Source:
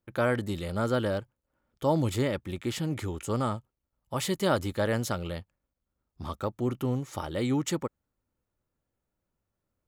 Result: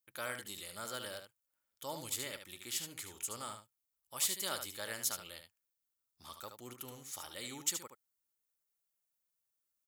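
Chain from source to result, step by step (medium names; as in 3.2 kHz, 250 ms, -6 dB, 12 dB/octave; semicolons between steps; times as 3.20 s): pre-emphasis filter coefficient 0.97; on a send: delay 74 ms -8 dB; on the sum: trim +3 dB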